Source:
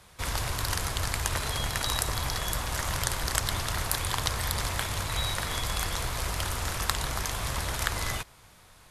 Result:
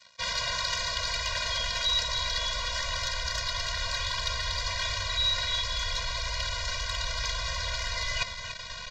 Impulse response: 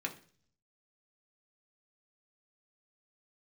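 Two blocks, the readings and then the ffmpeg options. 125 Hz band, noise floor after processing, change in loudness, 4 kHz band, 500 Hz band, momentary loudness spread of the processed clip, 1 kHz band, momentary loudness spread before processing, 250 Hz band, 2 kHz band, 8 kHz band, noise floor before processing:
−6.5 dB, −40 dBFS, +1.0 dB, +5.5 dB, −2.5 dB, 5 LU, −2.0 dB, 3 LU, −13.5 dB, +1.5 dB, −4.5 dB, −55 dBFS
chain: -filter_complex "[0:a]asubboost=boost=10.5:cutoff=58,aresample=16000,aeval=exprs='sgn(val(0))*max(abs(val(0))-0.00266,0)':channel_layout=same,aresample=44100,bandreject=frequency=3200:width=8.7,acontrast=79,asplit=2[link_01][link_02];[link_02]highpass=frequency=720:poles=1,volume=21dB,asoftclip=type=tanh:threshold=-2.5dB[link_03];[link_01][link_03]amix=inputs=2:normalize=0,lowpass=frequency=2600:poles=1,volume=-6dB,areverse,acompressor=threshold=-28dB:ratio=8,areverse,equalizer=frequency=4300:width_type=o:width=1.7:gain=14,aecho=1:1:288:0.316,afftfilt=real='re*eq(mod(floor(b*sr/1024/230),2),0)':imag='im*eq(mod(floor(b*sr/1024/230),2),0)':win_size=1024:overlap=0.75,volume=-3.5dB"

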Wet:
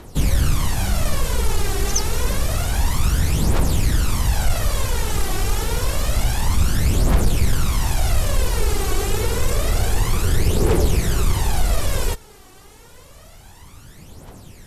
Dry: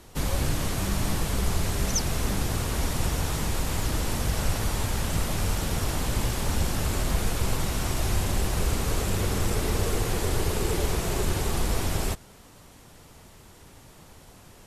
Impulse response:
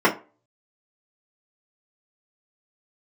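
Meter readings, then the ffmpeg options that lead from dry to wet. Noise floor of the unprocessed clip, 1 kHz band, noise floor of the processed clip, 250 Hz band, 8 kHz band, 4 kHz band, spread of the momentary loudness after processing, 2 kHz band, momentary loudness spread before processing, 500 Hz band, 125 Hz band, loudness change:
−51 dBFS, +4.5 dB, −45 dBFS, +4.0 dB, +5.0 dB, +4.5 dB, 4 LU, +4.5 dB, 2 LU, +5.0 dB, +7.0 dB, +6.5 dB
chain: -af "aphaser=in_gain=1:out_gain=1:delay=2.7:decay=0.61:speed=0.28:type=triangular,acontrast=80,volume=-3.5dB"

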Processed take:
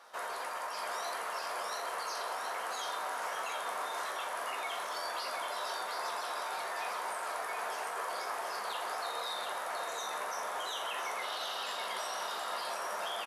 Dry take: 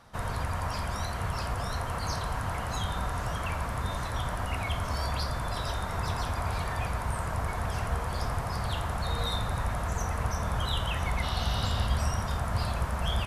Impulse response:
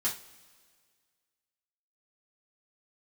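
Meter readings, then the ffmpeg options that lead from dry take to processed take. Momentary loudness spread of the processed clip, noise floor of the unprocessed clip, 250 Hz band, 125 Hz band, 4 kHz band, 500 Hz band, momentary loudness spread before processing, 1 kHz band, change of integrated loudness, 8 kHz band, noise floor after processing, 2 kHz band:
1 LU, −34 dBFS, −19.0 dB, below −40 dB, −3.0 dB, −3.0 dB, 3 LU, −2.0 dB, −5.0 dB, −1.5 dB, −39 dBFS, −1.5 dB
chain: -filter_complex "[0:a]highpass=frequency=420:width=0.5412,highpass=frequency=420:width=1.3066,alimiter=level_in=8dB:limit=-24dB:level=0:latency=1:release=19,volume=-8dB,aecho=1:1:724:0.596,asplit=2[link_01][link_02];[1:a]atrim=start_sample=2205,highshelf=frequency=9300:gain=6.5,adelay=10[link_03];[link_02][link_03]afir=irnorm=-1:irlink=0,volume=-10.5dB[link_04];[link_01][link_04]amix=inputs=2:normalize=0"

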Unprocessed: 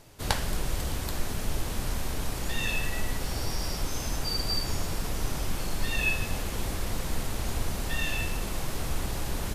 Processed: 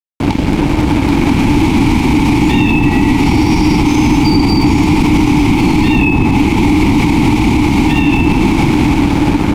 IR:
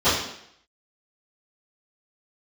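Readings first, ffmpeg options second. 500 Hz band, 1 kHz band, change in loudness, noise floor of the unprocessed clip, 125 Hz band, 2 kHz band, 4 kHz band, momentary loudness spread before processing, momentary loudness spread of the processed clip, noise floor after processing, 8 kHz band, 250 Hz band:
+19.5 dB, +21.5 dB, +21.0 dB, −34 dBFS, +21.0 dB, +16.0 dB, +12.0 dB, 5 LU, 2 LU, −14 dBFS, +7.0 dB, +31.0 dB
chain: -filter_complex "[0:a]asplit=3[link_01][link_02][link_03];[link_01]bandpass=frequency=300:width_type=q:width=8,volume=0dB[link_04];[link_02]bandpass=frequency=870:width_type=q:width=8,volume=-6dB[link_05];[link_03]bandpass=frequency=2240:width_type=q:width=8,volume=-9dB[link_06];[link_04][link_05][link_06]amix=inputs=3:normalize=0,bass=frequency=250:gain=14,treble=frequency=4000:gain=2,dynaudnorm=framelen=380:gausssize=9:maxgain=15.5dB,aeval=exprs='sgn(val(0))*max(abs(val(0))-0.00422,0)':channel_layout=same,acrossover=split=590|1700[link_07][link_08][link_09];[link_07]acompressor=threshold=-39dB:ratio=4[link_10];[link_08]acompressor=threshold=-54dB:ratio=4[link_11];[link_09]acompressor=threshold=-53dB:ratio=4[link_12];[link_10][link_11][link_12]amix=inputs=3:normalize=0,alimiter=level_in=36dB:limit=-1dB:release=50:level=0:latency=1,volume=-1dB"

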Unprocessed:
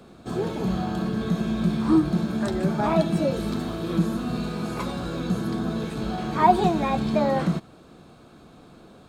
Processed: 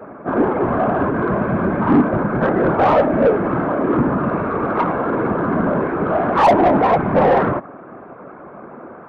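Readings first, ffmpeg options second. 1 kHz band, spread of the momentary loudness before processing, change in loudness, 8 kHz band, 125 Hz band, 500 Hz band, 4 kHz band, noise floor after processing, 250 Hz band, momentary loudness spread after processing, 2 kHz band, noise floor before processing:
+9.0 dB, 9 LU, +7.5 dB, can't be measured, +3.5 dB, +11.0 dB, −2.5 dB, −38 dBFS, +5.5 dB, 6 LU, +11.5 dB, −50 dBFS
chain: -filter_complex "[0:a]highpass=frequency=220:width_type=q:width=0.5412,highpass=frequency=220:width_type=q:width=1.307,lowpass=frequency=2000:width_type=q:width=0.5176,lowpass=frequency=2000:width_type=q:width=0.7071,lowpass=frequency=2000:width_type=q:width=1.932,afreqshift=-65,afftfilt=real='hypot(re,im)*cos(2*PI*random(0))':imag='hypot(re,im)*sin(2*PI*random(1))':win_size=512:overlap=0.75,asplit=2[link_01][link_02];[link_02]highpass=frequency=720:poles=1,volume=27dB,asoftclip=type=tanh:threshold=-9.5dB[link_03];[link_01][link_03]amix=inputs=2:normalize=0,lowpass=frequency=1100:poles=1,volume=-6dB,volume=6.5dB"

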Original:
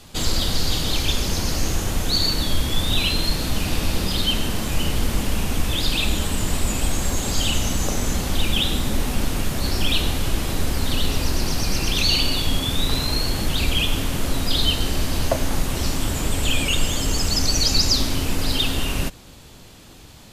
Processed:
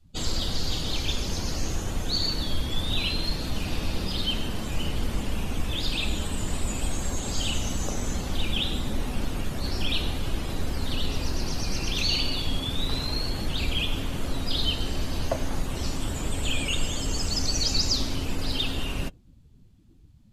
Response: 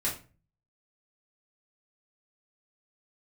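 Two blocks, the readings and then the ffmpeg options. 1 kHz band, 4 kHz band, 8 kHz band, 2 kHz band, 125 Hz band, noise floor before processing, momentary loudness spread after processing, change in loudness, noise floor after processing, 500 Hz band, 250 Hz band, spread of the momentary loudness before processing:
−7.0 dB, −6.5 dB, −8.0 dB, −7.0 dB, −6.0 dB, −44 dBFS, 6 LU, −6.5 dB, −53 dBFS, −6.0 dB, −6.0 dB, 5 LU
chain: -af "afftdn=noise_reduction=23:noise_floor=-37,volume=-6dB"

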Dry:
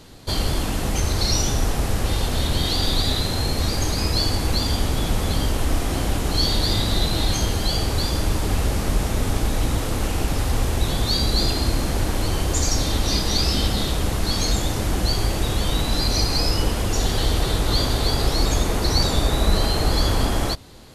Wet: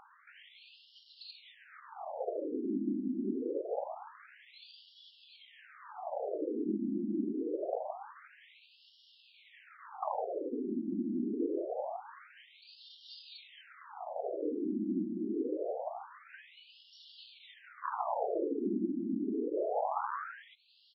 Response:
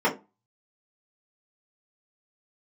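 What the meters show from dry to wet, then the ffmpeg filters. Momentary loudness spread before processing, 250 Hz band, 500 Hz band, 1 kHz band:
4 LU, −9.5 dB, −9.0 dB, −11.5 dB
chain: -af "highpass=73,bass=frequency=250:gain=10,treble=frequency=4000:gain=-2,acontrast=77,aecho=1:1:92|184|276:0.0631|0.0297|0.0139,alimiter=limit=-8dB:level=0:latency=1:release=413,afwtdn=0.0794,equalizer=frequency=1000:width_type=o:width=2.7:gain=12,acompressor=threshold=-23dB:ratio=2.5,afftfilt=real='re*between(b*sr/1024,250*pow(4000/250,0.5+0.5*sin(2*PI*0.25*pts/sr))/1.41,250*pow(4000/250,0.5+0.5*sin(2*PI*0.25*pts/sr))*1.41)':imag='im*between(b*sr/1024,250*pow(4000/250,0.5+0.5*sin(2*PI*0.25*pts/sr))/1.41,250*pow(4000/250,0.5+0.5*sin(2*PI*0.25*pts/sr))*1.41)':win_size=1024:overlap=0.75,volume=-4dB"

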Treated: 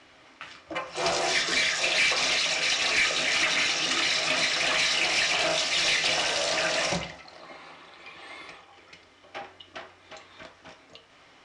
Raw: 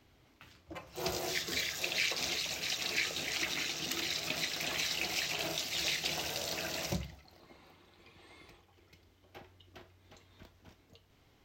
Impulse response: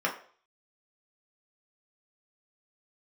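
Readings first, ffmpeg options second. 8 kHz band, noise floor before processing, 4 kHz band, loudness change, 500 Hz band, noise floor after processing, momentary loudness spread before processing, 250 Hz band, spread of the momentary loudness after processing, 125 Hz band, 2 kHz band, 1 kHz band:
+8.5 dB, −66 dBFS, +10.0 dB, +10.5 dB, +11.0 dB, −56 dBFS, 6 LU, +5.5 dB, 19 LU, +2.0 dB, +12.5 dB, +13.0 dB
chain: -filter_complex "[0:a]asplit=2[link_01][link_02];[1:a]atrim=start_sample=2205[link_03];[link_02][link_03]afir=irnorm=-1:irlink=0,volume=-10.5dB[link_04];[link_01][link_04]amix=inputs=2:normalize=0,asplit=2[link_05][link_06];[link_06]highpass=frequency=720:poles=1,volume=18dB,asoftclip=type=tanh:threshold=-14.5dB[link_07];[link_05][link_07]amix=inputs=2:normalize=0,lowpass=frequency=5500:poles=1,volume=-6dB,aresample=22050,aresample=44100"

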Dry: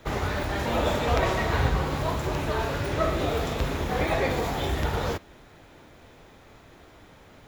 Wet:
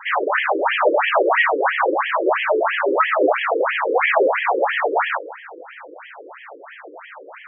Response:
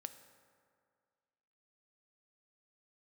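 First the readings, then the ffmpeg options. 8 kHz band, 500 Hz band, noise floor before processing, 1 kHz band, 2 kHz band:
below −40 dB, +9.5 dB, −52 dBFS, +10.5 dB, +13.0 dB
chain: -filter_complex "[0:a]asplit=2[link_01][link_02];[link_02]highpass=frequency=720:poles=1,volume=23dB,asoftclip=type=tanh:threshold=-7.5dB[link_03];[link_01][link_03]amix=inputs=2:normalize=0,lowpass=frequency=2700:poles=1,volume=-6dB,asplit=2[link_04][link_05];[1:a]atrim=start_sample=2205[link_06];[link_05][link_06]afir=irnorm=-1:irlink=0,volume=4.5dB[link_07];[link_04][link_07]amix=inputs=2:normalize=0,afftfilt=real='re*between(b*sr/1024,380*pow(2400/380,0.5+0.5*sin(2*PI*3*pts/sr))/1.41,380*pow(2400/380,0.5+0.5*sin(2*PI*3*pts/sr))*1.41)':imag='im*between(b*sr/1024,380*pow(2400/380,0.5+0.5*sin(2*PI*3*pts/sr))/1.41,380*pow(2400/380,0.5+0.5*sin(2*PI*3*pts/sr))*1.41)':win_size=1024:overlap=0.75"

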